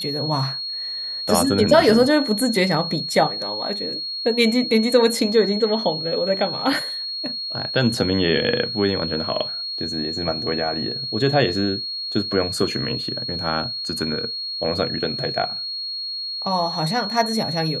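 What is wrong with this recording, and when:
tone 4300 Hz -26 dBFS

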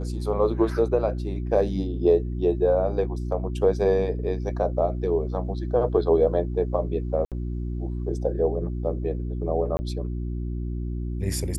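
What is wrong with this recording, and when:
hum 60 Hz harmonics 6 -29 dBFS
7.25–7.32 gap 67 ms
9.77–9.79 gap 20 ms

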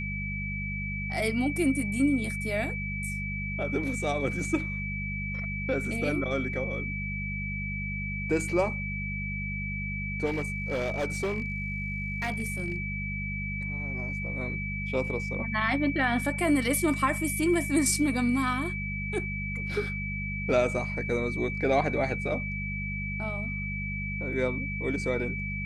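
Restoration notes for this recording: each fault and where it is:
hum 50 Hz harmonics 4 -35 dBFS
tone 2300 Hz -34 dBFS
10.25–12.76 clipped -25 dBFS

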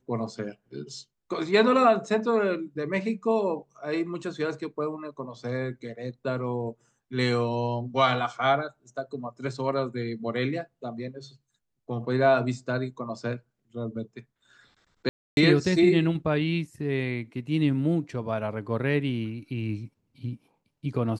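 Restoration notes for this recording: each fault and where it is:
15.09–15.37 gap 0.281 s

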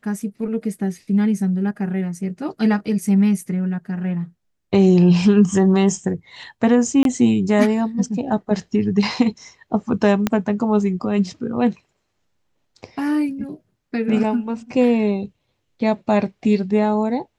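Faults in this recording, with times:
7.03–7.05 gap 22 ms
10.27 pop -5 dBFS

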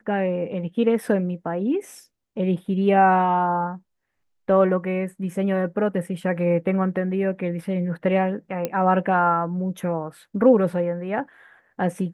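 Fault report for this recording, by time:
8.65 pop -11 dBFS

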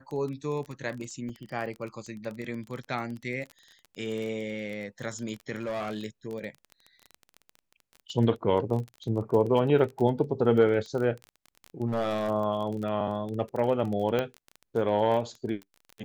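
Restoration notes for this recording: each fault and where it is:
crackle 20/s -33 dBFS
1.29 gap 5 ms
5.57–6.01 clipped -28 dBFS
11.88–12.3 clipped -23.5 dBFS
14.19 pop -15 dBFS

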